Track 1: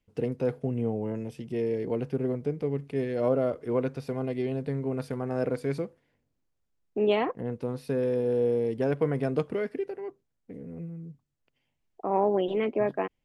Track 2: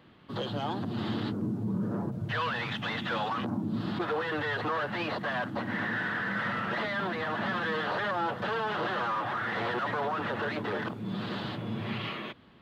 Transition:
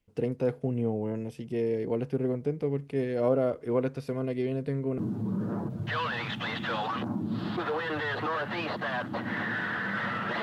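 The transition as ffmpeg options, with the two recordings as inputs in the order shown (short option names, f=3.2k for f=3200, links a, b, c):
-filter_complex "[0:a]asettb=1/sr,asplit=3[a][b][c];[a]atrim=end=3.974[d];[b]atrim=start=3.97:end=4.98,asetpts=PTS-STARTPTS,afade=t=in:d=0.004:c=qsin,afade=t=out:st=1.006:d=0.004:c=qsin,bandreject=f=810:w=5.3[e];[c]atrim=start=4.976[f];[d][e]acrossfade=d=0.004:c1=hsin:c2=qsin[g];[g][f]acrossfade=d=0.004:c1=qsin:c2=hsin,apad=whole_dur=10.42,atrim=end=10.42,atrim=end=4.982[h];[1:a]atrim=start=1.398:end=6.84[i];[h][i]acrossfade=d=0.004:c1=hsin:c2=hsin"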